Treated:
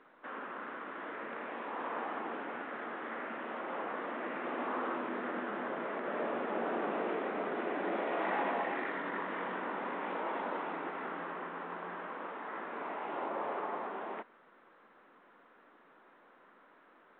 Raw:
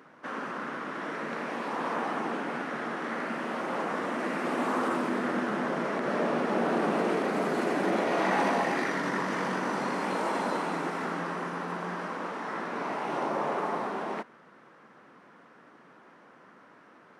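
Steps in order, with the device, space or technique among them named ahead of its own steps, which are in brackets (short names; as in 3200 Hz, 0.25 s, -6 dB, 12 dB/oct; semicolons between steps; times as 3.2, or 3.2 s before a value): telephone (BPF 290–3300 Hz; gain -6.5 dB; µ-law 64 kbps 8000 Hz)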